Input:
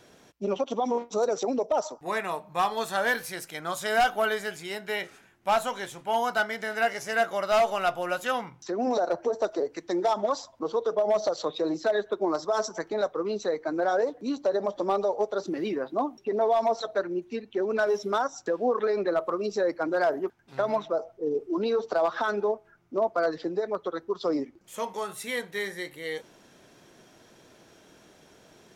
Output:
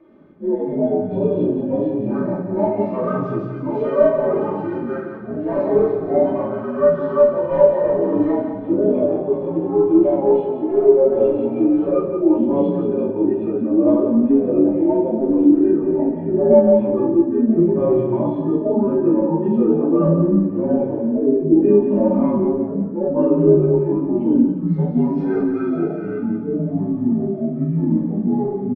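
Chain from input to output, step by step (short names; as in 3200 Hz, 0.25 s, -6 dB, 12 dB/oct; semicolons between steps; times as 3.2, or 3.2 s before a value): inharmonic rescaling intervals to 83%; LPF 1200 Hz 12 dB/oct; bell 240 Hz +6 dB 2.4 oct; notches 50/100/150/200/250 Hz; comb 3.3 ms, depth 59%; harmonic-percussive split percussive -10 dB; added harmonics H 2 -32 dB, 5 -44 dB, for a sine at -8.5 dBFS; reverb RT60 0.50 s, pre-delay 6 ms, DRR -1.5 dB; echoes that change speed 92 ms, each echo -6 st, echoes 2; thinning echo 0.176 s, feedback 47%, high-pass 420 Hz, level -7 dB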